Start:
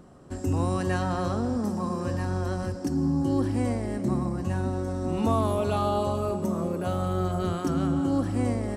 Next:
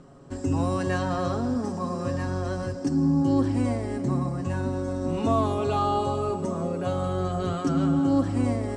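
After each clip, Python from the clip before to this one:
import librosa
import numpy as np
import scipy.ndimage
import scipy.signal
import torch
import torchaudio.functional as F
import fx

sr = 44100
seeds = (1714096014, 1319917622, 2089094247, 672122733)

y = scipy.signal.sosfilt(scipy.signal.butter(6, 8700.0, 'lowpass', fs=sr, output='sos'), x)
y = y + 0.54 * np.pad(y, (int(7.3 * sr / 1000.0), 0))[:len(y)]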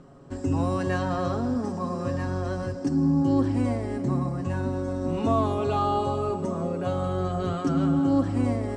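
y = fx.high_shelf(x, sr, hz=5400.0, db=-6.0)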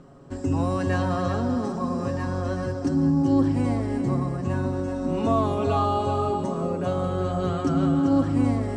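y = x + 10.0 ** (-8.0 / 20.0) * np.pad(x, (int(390 * sr / 1000.0), 0))[:len(x)]
y = F.gain(torch.from_numpy(y), 1.0).numpy()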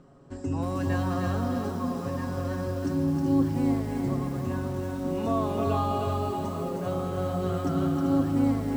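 y = fx.echo_crushed(x, sr, ms=314, feedback_pct=35, bits=7, wet_db=-4)
y = F.gain(torch.from_numpy(y), -5.5).numpy()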